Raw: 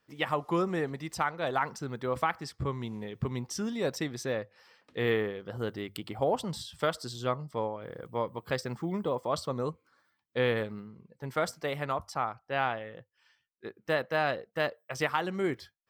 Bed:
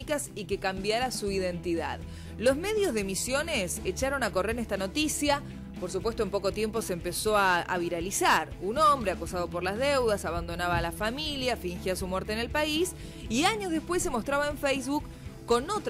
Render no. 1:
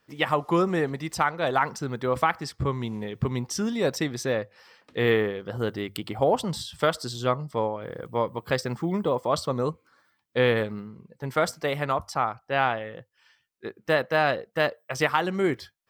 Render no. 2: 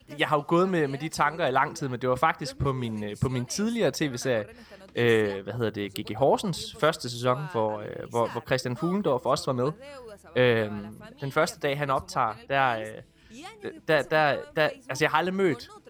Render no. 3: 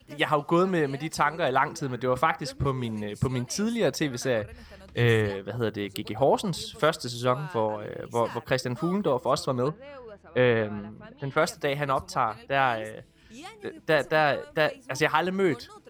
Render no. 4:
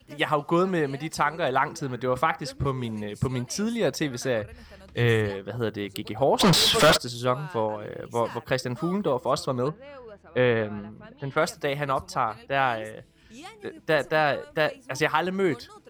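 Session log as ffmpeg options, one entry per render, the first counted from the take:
-af "volume=6dB"
-filter_complex "[1:a]volume=-18dB[a];[0:a][a]amix=inputs=2:normalize=0"
-filter_complex "[0:a]asettb=1/sr,asplit=3[a][b][c];[a]atrim=end=1.794[d];[b]atrim=start=1.79:end=2.36,asetpts=PTS-STARTPTS,afade=t=in:d=0.004:c=qsin,afade=t=out:st=0.566:d=0.004:c=qsin,bandreject=f=115:t=h:w=4,bandreject=f=230:t=h:w=4,bandreject=f=345:t=h:w=4,bandreject=f=460:t=h:w=4,bandreject=f=575:t=h:w=4,bandreject=f=690:t=h:w=4,bandreject=f=805:t=h:w=4,bandreject=f=920:t=h:w=4,bandreject=f=1.035k:t=h:w=4,bandreject=f=1.15k:t=h:w=4,bandreject=f=1.265k:t=h:w=4,bandreject=f=1.38k:t=h:w=4,bandreject=f=1.495k:t=h:w=4,bandreject=f=1.61k:t=h:w=4,bandreject=f=1.725k:t=h:w=4,bandreject=f=1.84k:t=h:w=4,bandreject=f=1.955k:t=h:w=4,bandreject=f=2.07k:t=h:w=4,bandreject=f=2.185k:t=h:w=4,bandreject=f=2.3k:t=h:w=4,bandreject=f=2.415k:t=h:w=4,bandreject=f=2.53k:t=h:w=4,bandreject=f=2.645k:t=h:w=4,bandreject=f=2.76k:t=h:w=4[e];[c]atrim=start=2.356[f];[d][e]acrossfade=d=0.004:c1=hsin:c2=qsin[g];[g][f]acrossfade=d=0.004:c1=qsin:c2=hsin,asplit=3[h][i][j];[h]afade=t=out:st=4.41:d=0.02[k];[i]asubboost=boost=5:cutoff=120,afade=t=in:st=4.41:d=0.02,afade=t=out:st=5.29:d=0.02[l];[j]afade=t=in:st=5.29:d=0.02[m];[k][l][m]amix=inputs=3:normalize=0,asettb=1/sr,asplit=3[n][o][p];[n]atrim=end=9.684[q];[o]atrim=start=9.68:end=11.37,asetpts=PTS-STARTPTS,afade=t=in:d=0.004:c=qsin,afade=t=out:st=1.686:d=0.004:c=qsin,lowpass=2.9k[r];[p]atrim=start=11.366[s];[q][r]acrossfade=d=0.004:c1=hsin:c2=qsin[t];[t][s]acrossfade=d=0.004:c1=qsin:c2=hsin"
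-filter_complex "[0:a]asplit=3[a][b][c];[a]afade=t=out:st=6.39:d=0.02[d];[b]asplit=2[e][f];[f]highpass=f=720:p=1,volume=37dB,asoftclip=type=tanh:threshold=-9.5dB[g];[e][g]amix=inputs=2:normalize=0,lowpass=f=3.8k:p=1,volume=-6dB,afade=t=in:st=6.39:d=0.02,afade=t=out:st=6.96:d=0.02[h];[c]afade=t=in:st=6.96:d=0.02[i];[d][h][i]amix=inputs=3:normalize=0"

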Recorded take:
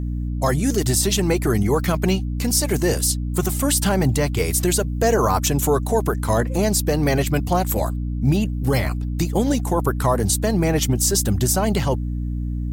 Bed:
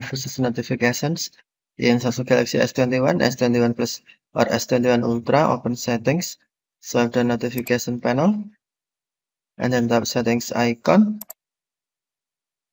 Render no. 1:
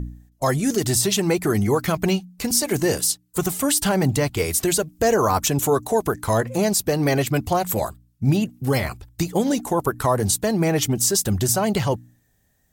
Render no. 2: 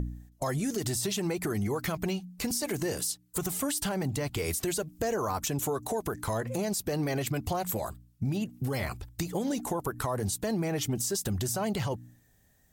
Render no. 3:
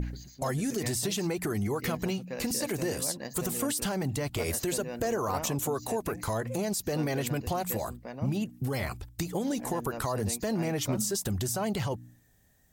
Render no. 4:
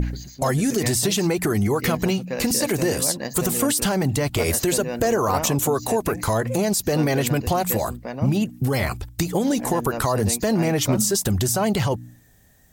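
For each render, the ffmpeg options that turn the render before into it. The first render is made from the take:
-af "bandreject=f=60:t=h:w=4,bandreject=f=120:t=h:w=4,bandreject=f=180:t=h:w=4,bandreject=f=240:t=h:w=4,bandreject=f=300:t=h:w=4"
-af "alimiter=limit=-17.5dB:level=0:latency=1:release=99,acompressor=threshold=-31dB:ratio=2"
-filter_complex "[1:a]volume=-21.5dB[a];[0:a][a]amix=inputs=2:normalize=0"
-af "volume=9.5dB"

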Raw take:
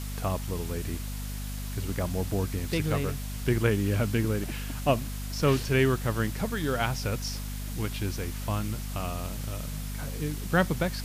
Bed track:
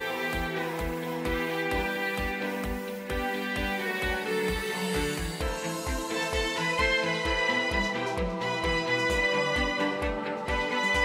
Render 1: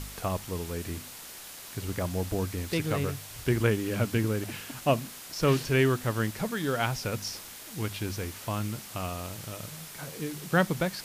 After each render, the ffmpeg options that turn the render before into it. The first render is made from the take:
-af "bandreject=f=50:t=h:w=4,bandreject=f=100:t=h:w=4,bandreject=f=150:t=h:w=4,bandreject=f=200:t=h:w=4,bandreject=f=250:t=h:w=4"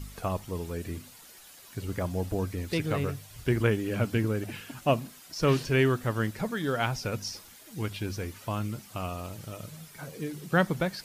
-af "afftdn=nr=10:nf=-45"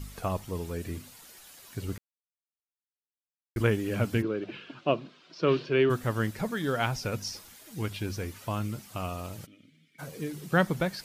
-filter_complex "[0:a]asplit=3[a][b][c];[a]afade=t=out:st=4.21:d=0.02[d];[b]highpass=f=160:w=0.5412,highpass=f=160:w=1.3066,equalizer=f=230:t=q:w=4:g=-7,equalizer=f=360:t=q:w=4:g=5,equalizer=f=820:t=q:w=4:g=-7,equalizer=f=1.9k:t=q:w=4:g=-7,lowpass=f=4k:w=0.5412,lowpass=f=4k:w=1.3066,afade=t=in:st=4.21:d=0.02,afade=t=out:st=5.89:d=0.02[e];[c]afade=t=in:st=5.89:d=0.02[f];[d][e][f]amix=inputs=3:normalize=0,asplit=3[g][h][i];[g]afade=t=out:st=9.45:d=0.02[j];[h]asplit=3[k][l][m];[k]bandpass=f=270:t=q:w=8,volume=0dB[n];[l]bandpass=f=2.29k:t=q:w=8,volume=-6dB[o];[m]bandpass=f=3.01k:t=q:w=8,volume=-9dB[p];[n][o][p]amix=inputs=3:normalize=0,afade=t=in:st=9.45:d=0.02,afade=t=out:st=9.98:d=0.02[q];[i]afade=t=in:st=9.98:d=0.02[r];[j][q][r]amix=inputs=3:normalize=0,asplit=3[s][t][u];[s]atrim=end=1.98,asetpts=PTS-STARTPTS,afade=t=out:st=1.976:d=0.004:c=hsin[v];[t]atrim=start=1.98:end=3.56,asetpts=PTS-STARTPTS,volume=0[w];[u]atrim=start=3.56,asetpts=PTS-STARTPTS,afade=t=in:d=0.004:c=hsin[x];[v][w][x]concat=n=3:v=0:a=1"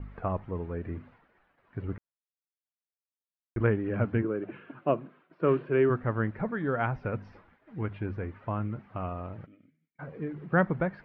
-af "lowpass=f=1.9k:w=0.5412,lowpass=f=1.9k:w=1.3066,agate=range=-33dB:threshold=-53dB:ratio=3:detection=peak"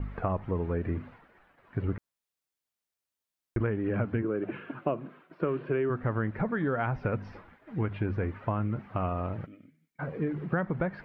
-filter_complex "[0:a]asplit=2[a][b];[b]alimiter=limit=-21.5dB:level=0:latency=1:release=29,volume=0.5dB[c];[a][c]amix=inputs=2:normalize=0,acompressor=threshold=-25dB:ratio=12"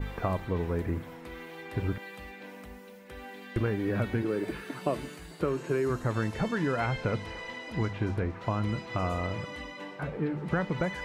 -filter_complex "[1:a]volume=-14dB[a];[0:a][a]amix=inputs=2:normalize=0"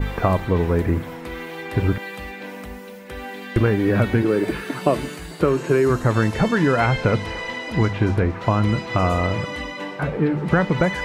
-af "volume=11dB"

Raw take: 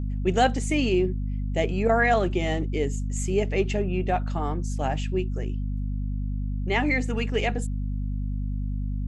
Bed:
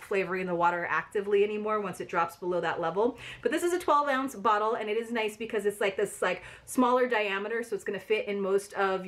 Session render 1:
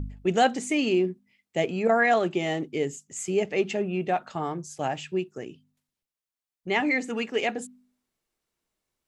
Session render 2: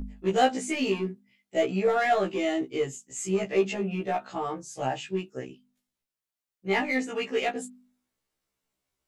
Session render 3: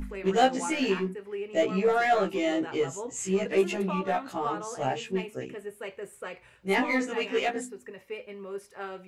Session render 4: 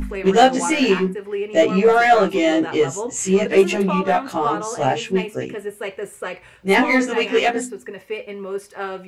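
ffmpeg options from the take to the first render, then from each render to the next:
-af "bandreject=f=50:t=h:w=4,bandreject=f=100:t=h:w=4,bandreject=f=150:t=h:w=4,bandreject=f=200:t=h:w=4,bandreject=f=250:t=h:w=4"
-filter_complex "[0:a]asplit=2[a][b];[b]aeval=exprs='0.075*(abs(mod(val(0)/0.075+3,4)-2)-1)':c=same,volume=-12dB[c];[a][c]amix=inputs=2:normalize=0,afftfilt=real='re*1.73*eq(mod(b,3),0)':imag='im*1.73*eq(mod(b,3),0)':win_size=2048:overlap=0.75"
-filter_complex "[1:a]volume=-10.5dB[a];[0:a][a]amix=inputs=2:normalize=0"
-af "volume=10dB,alimiter=limit=-2dB:level=0:latency=1"

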